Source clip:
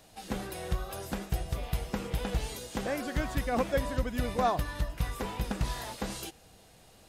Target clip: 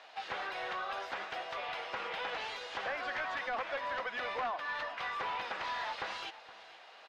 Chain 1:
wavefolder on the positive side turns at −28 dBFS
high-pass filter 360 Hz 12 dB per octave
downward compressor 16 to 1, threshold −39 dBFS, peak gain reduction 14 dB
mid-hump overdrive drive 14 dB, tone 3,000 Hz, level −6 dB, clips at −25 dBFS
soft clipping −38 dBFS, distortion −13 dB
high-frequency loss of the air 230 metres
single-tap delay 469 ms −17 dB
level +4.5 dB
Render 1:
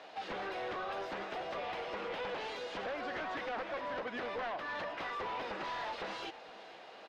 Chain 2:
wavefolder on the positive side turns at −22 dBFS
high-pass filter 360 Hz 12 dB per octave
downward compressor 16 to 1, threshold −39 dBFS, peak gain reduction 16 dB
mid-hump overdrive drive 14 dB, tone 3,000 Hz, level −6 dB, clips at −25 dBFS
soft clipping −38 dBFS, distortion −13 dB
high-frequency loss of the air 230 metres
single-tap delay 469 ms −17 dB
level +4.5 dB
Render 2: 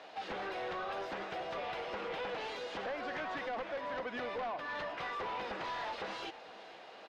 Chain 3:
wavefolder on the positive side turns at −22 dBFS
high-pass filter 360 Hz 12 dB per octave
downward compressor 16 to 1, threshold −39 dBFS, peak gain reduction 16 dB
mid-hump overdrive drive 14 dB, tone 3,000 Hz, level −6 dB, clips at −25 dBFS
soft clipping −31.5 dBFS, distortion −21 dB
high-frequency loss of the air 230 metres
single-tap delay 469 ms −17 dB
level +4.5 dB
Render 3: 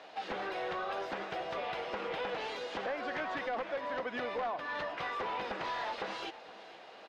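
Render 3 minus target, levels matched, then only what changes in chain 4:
500 Hz band +4.5 dB
change: high-pass filter 870 Hz 12 dB per octave

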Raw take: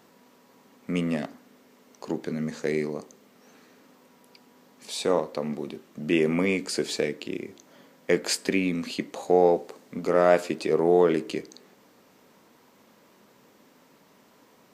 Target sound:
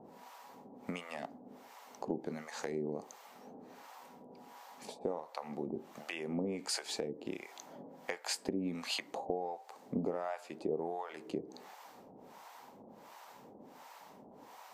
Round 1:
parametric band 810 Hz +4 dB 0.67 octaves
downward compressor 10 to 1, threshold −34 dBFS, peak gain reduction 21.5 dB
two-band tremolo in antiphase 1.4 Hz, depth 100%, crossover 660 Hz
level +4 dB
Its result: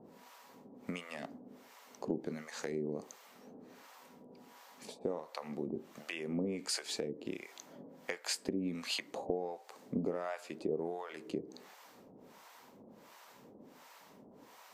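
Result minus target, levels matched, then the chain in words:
1,000 Hz band −4.0 dB
parametric band 810 Hz +12.5 dB 0.67 octaves
downward compressor 10 to 1, threshold −34 dBFS, peak gain reduction 25.5 dB
two-band tremolo in antiphase 1.4 Hz, depth 100%, crossover 660 Hz
level +4 dB

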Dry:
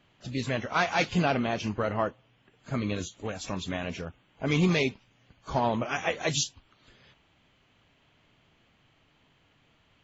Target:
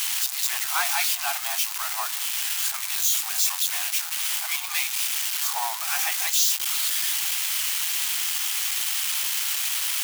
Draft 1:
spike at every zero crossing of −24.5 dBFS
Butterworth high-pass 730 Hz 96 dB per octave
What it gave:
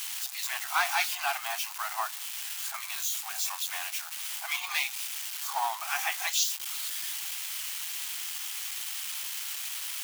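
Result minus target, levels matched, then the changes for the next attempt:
spike at every zero crossing: distortion −10 dB
change: spike at every zero crossing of −14.5 dBFS

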